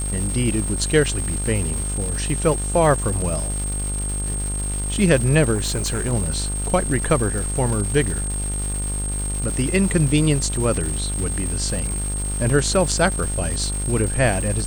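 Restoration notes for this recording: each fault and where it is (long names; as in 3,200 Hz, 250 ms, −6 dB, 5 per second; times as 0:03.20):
mains buzz 50 Hz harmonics 32 −26 dBFS
surface crackle 470 per second −27 dBFS
whistle 8,500 Hz −27 dBFS
0:05.54–0:06.13: clipping −19 dBFS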